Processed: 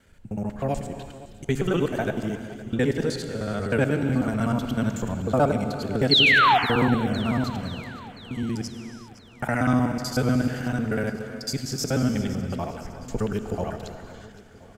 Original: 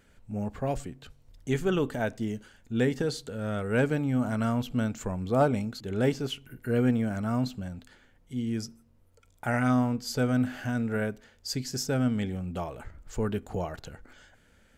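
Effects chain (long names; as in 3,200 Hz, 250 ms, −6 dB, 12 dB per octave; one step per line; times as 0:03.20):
reversed piece by piece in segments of 62 ms
sound drawn into the spectrogram fall, 0:06.11–0:06.58, 680–4,500 Hz −20 dBFS
on a send: repeating echo 513 ms, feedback 59%, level −17 dB
on the sum: reverb whose tail is shaped and stops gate 420 ms flat, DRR 8 dB
level +3 dB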